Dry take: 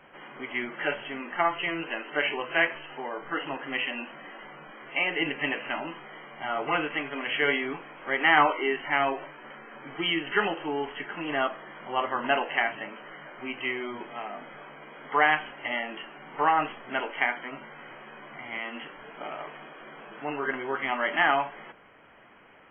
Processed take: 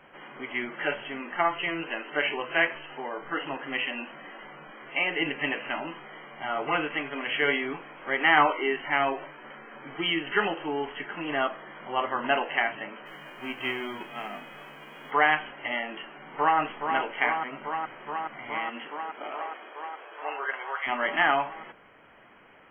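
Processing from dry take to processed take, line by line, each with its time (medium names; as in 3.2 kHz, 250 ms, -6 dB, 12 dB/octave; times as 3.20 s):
13.05–15.10 s: formants flattened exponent 0.6
16.17–16.59 s: echo throw 420 ms, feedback 85%, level -6 dB
18.67–20.86 s: high-pass 170 Hz -> 660 Hz 24 dB/octave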